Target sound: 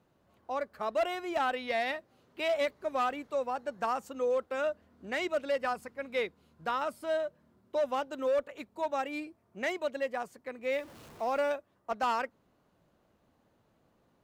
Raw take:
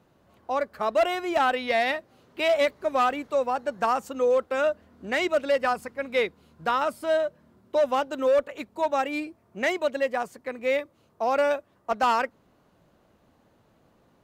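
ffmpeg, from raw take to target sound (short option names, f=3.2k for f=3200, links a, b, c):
-filter_complex "[0:a]asettb=1/sr,asplit=3[a][b][c];[a]atrim=end=10.724[d];[b]atrim=start=10.72:end=11.52,asetpts=PTS-STARTPTS,afade=t=in:d=0.004:c=qsin,afade=t=out:st=0.796:d=0.004:c=qsin,aeval=exprs='val(0)+0.5*0.0106*sgn(val(0))':c=same[e];[c]atrim=start=11.516[f];[d][e]acrossfade=d=0.004:c1=hsin:c2=qsin[g];[g][f]acrossfade=d=0.004:c1=qsin:c2=hsin,volume=-7.5dB"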